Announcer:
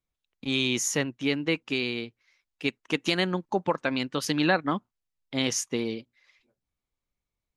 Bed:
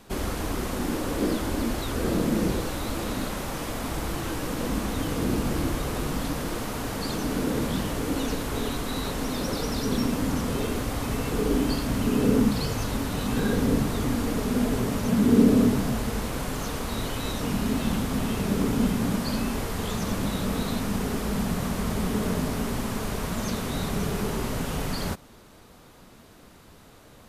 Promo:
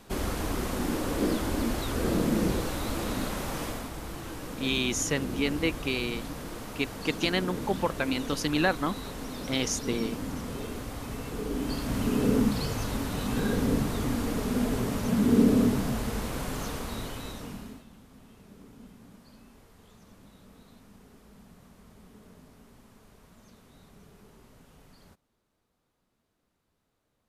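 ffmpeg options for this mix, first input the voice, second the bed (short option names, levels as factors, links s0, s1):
-filter_complex "[0:a]adelay=4150,volume=0.794[s0];[1:a]volume=1.58,afade=t=out:st=3.64:d=0.26:silence=0.446684,afade=t=in:st=11.53:d=0.45:silence=0.530884,afade=t=out:st=16.62:d=1.23:silence=0.0668344[s1];[s0][s1]amix=inputs=2:normalize=0"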